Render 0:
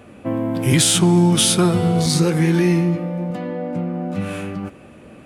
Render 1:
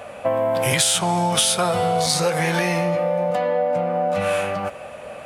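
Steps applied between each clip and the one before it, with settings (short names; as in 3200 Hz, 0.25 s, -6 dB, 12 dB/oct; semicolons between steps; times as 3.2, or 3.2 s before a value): resonant low shelf 440 Hz -10.5 dB, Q 3; compressor 5:1, threshold -25 dBFS, peak gain reduction 11 dB; gain +8 dB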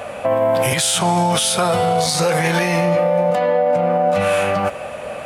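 limiter -15.5 dBFS, peak gain reduction 10 dB; gain +7 dB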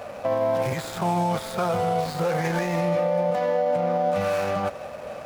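median filter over 15 samples; gain -6.5 dB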